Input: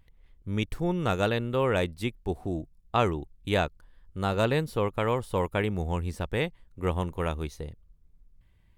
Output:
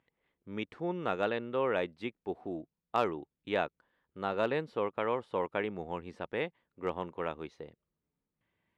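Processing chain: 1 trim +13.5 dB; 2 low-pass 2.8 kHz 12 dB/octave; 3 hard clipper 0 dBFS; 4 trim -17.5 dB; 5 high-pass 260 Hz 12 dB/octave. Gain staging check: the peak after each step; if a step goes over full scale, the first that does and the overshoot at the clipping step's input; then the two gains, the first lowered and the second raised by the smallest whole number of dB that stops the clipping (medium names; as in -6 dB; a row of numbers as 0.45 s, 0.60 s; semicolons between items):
+3.5 dBFS, +3.0 dBFS, 0.0 dBFS, -17.5 dBFS, -15.0 dBFS; step 1, 3.0 dB; step 1 +10.5 dB, step 4 -14.5 dB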